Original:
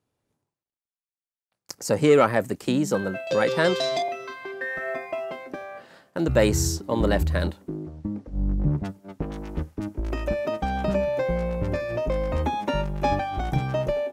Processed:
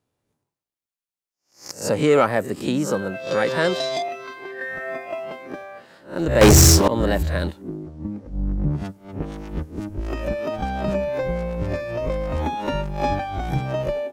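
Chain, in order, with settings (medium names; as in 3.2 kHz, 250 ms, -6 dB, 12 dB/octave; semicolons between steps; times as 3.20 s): reverse spectral sustain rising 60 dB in 0.34 s; 6.41–6.88 s: waveshaping leveller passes 5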